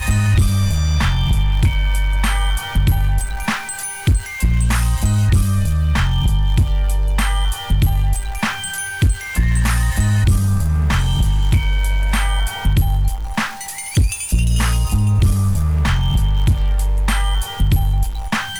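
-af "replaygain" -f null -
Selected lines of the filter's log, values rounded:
track_gain = +3.4 dB
track_peak = 0.276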